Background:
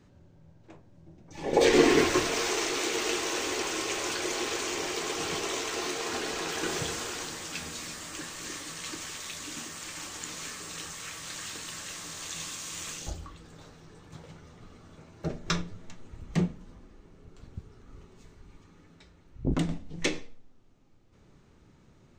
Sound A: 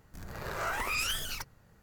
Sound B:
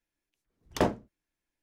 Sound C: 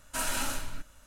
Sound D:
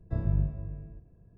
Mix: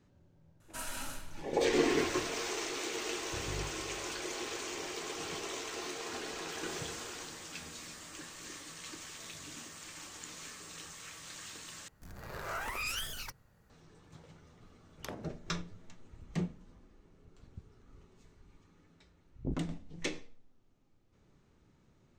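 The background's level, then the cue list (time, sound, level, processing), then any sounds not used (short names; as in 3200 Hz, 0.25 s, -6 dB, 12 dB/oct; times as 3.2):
background -8 dB
0.6 add C -9.5 dB
3.21 add D -15 dB
9.08 add D -16 dB + HPF 310 Hz
11.88 replace with A -5 dB
14.28 add B -3 dB + compressor 12:1, threshold -35 dBFS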